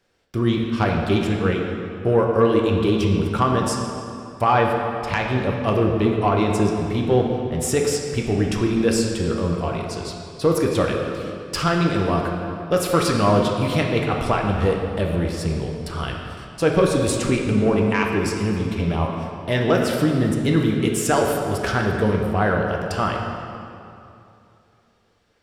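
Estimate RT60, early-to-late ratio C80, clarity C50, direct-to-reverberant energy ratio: 2.7 s, 3.5 dB, 2.5 dB, 0.0 dB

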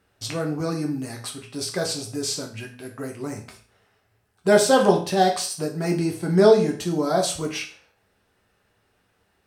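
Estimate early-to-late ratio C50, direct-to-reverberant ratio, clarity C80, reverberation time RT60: 9.5 dB, 1.0 dB, 13.5 dB, 0.40 s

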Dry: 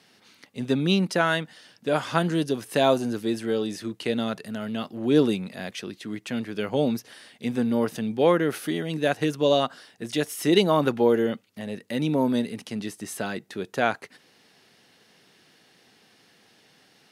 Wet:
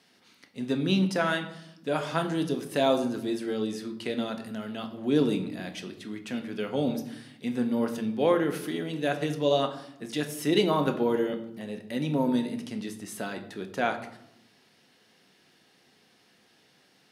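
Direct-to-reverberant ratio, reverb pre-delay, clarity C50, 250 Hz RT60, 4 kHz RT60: 5.5 dB, 3 ms, 11.0 dB, 1.2 s, 0.50 s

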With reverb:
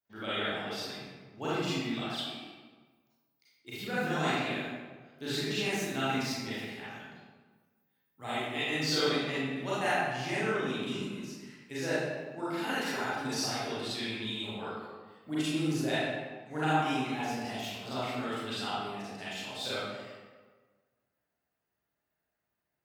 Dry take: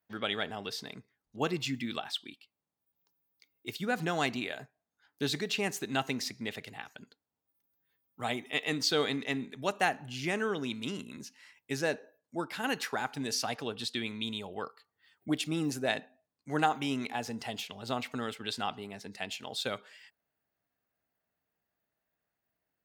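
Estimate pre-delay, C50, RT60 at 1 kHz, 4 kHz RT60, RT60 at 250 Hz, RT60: 30 ms, -5.0 dB, 1.4 s, 0.90 s, 1.5 s, 1.4 s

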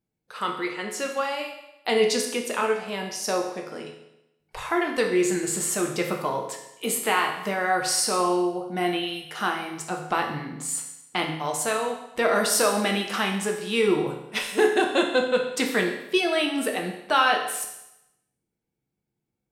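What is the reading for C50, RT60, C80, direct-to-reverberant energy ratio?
6.0 dB, 0.85 s, 8.5 dB, 1.0 dB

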